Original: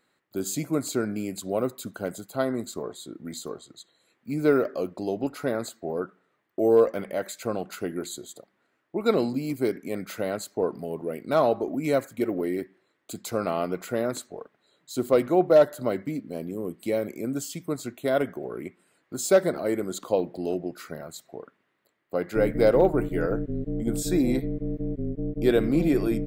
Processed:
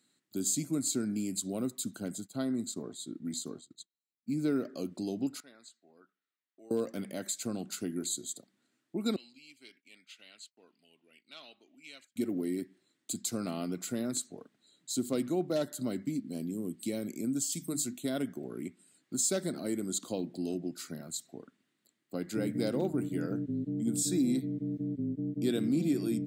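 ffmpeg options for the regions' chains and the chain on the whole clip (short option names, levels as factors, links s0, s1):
-filter_complex "[0:a]asettb=1/sr,asplit=3[s0][s1][s2];[s0]atrim=end=2.004[s3];[s1]atrim=start=2:end=4.76,asetpts=PTS-STARTPTS,afade=t=in:d=0.004:c=qsin,afade=t=out:st=2.756:d=0.004:c=qsin,highshelf=f=4200:g=-5.5,agate=range=0.0224:threshold=0.00562:ratio=3:release=100:detection=peak[s4];[s2]atrim=start=4.756[s5];[s3][s4]acrossfade=d=0.004:c1=hsin:c2=qsin[s6];[s6][s5]acrossfade=d=0.004:c1=qsin:c2=hsin,asettb=1/sr,asplit=3[s7][s8][s9];[s7]atrim=end=5.404[s10];[s8]atrim=start=5.4:end=6.71,asetpts=PTS-STARTPTS,afade=t=in:d=0.004:c=qsin,afade=t=out:st=1.306:d=0.004:c=qsin,lowpass=2400,aderivative[s11];[s9]atrim=start=6.706[s12];[s10][s11]acrossfade=d=0.004:c1=hsin:c2=qsin[s13];[s13][s12]acrossfade=d=0.004:c1=qsin:c2=hsin,asettb=1/sr,asplit=3[s14][s15][s16];[s14]atrim=end=9.164[s17];[s15]atrim=start=9.16:end=12.16,asetpts=PTS-STARTPTS,afade=t=in:d=0.004:c=qsin,afade=t=out:st=2.996:d=0.004:c=qsin,agate=range=0.0224:threshold=0.0112:ratio=3:release=100:detection=peak,bandpass=f=2800:t=q:w=4[s18];[s16]atrim=start=12.156[s19];[s17][s18]acrossfade=d=0.004:c1=hsin:c2=qsin[s20];[s20][s19]acrossfade=d=0.004:c1=qsin:c2=hsin,asettb=1/sr,asplit=3[s21][s22][s23];[s21]atrim=end=17.524[s24];[s22]atrim=start=17.52:end=17.98,asetpts=PTS-STARTPTS,afade=t=in:d=0.004:c=qsin,afade=t=out:st=0.456:d=0.004:c=qsin,highshelf=f=6700:g=11,bandreject=f=50:t=h:w=6,bandreject=f=100:t=h:w=6,bandreject=f=150:t=h:w=6,bandreject=f=200:t=h:w=6,bandreject=f=250:t=h:w=6,bandreject=f=300:t=h:w=6[s25];[s23]atrim=start=17.976[s26];[s24][s25]acrossfade=d=0.004:c1=hsin:c2=qsin[s27];[s27][s26]acrossfade=d=0.004:c1=qsin:c2=hsin,equalizer=f=250:t=o:w=1:g=8,equalizer=f=500:t=o:w=1:g=-8,equalizer=f=1000:t=o:w=1:g=-7,equalizer=f=2000:t=o:w=1:g=-4,equalizer=f=4000:t=o:w=1:g=5,equalizer=f=8000:t=o:w=1:g=11,acompressor=threshold=0.0355:ratio=1.5,highpass=f=92:w=0.5412,highpass=f=92:w=1.3066,volume=0.596"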